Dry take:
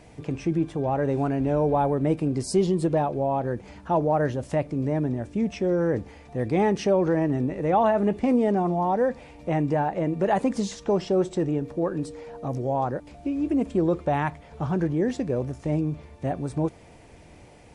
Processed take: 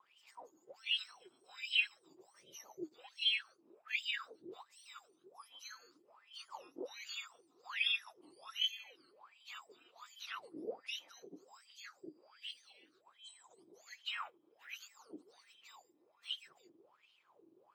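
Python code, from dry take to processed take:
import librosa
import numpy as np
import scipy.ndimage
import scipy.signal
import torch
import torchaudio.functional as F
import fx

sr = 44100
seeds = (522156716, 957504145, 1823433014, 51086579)

y = fx.octave_mirror(x, sr, pivot_hz=1500.0)
y = y * np.sin(2.0 * np.pi * 110.0 * np.arange(len(y)) / sr)
y = fx.wah_lfo(y, sr, hz=1.3, low_hz=300.0, high_hz=3100.0, q=13.0)
y = F.gain(torch.from_numpy(y), 5.5).numpy()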